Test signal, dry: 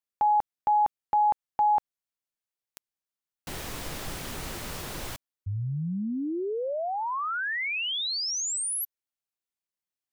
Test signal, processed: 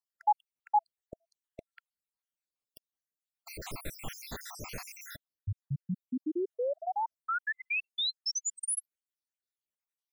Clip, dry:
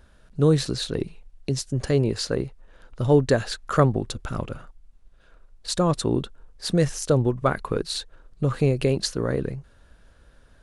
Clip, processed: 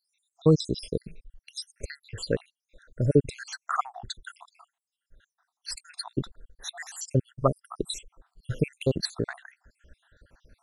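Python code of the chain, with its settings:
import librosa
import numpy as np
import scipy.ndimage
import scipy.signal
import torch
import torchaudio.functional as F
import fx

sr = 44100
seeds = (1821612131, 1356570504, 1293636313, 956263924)

y = fx.spec_dropout(x, sr, seeds[0], share_pct=73)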